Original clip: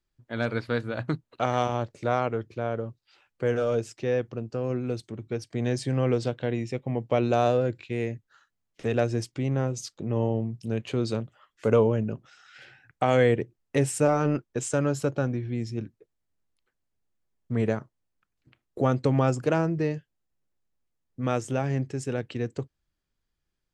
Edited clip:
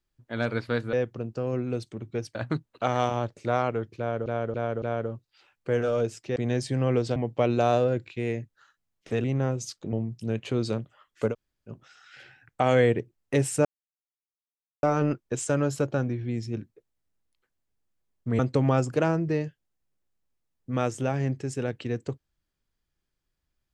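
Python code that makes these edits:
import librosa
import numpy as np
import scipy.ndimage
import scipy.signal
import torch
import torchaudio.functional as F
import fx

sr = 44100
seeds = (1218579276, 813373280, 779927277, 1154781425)

y = fx.edit(x, sr, fx.repeat(start_s=2.56, length_s=0.28, count=4),
    fx.move(start_s=4.1, length_s=1.42, to_s=0.93),
    fx.cut(start_s=6.32, length_s=0.57),
    fx.cut(start_s=8.97, length_s=0.43),
    fx.cut(start_s=10.09, length_s=0.26),
    fx.room_tone_fill(start_s=11.72, length_s=0.41, crossfade_s=0.1),
    fx.insert_silence(at_s=14.07, length_s=1.18),
    fx.cut(start_s=17.63, length_s=1.26), tone=tone)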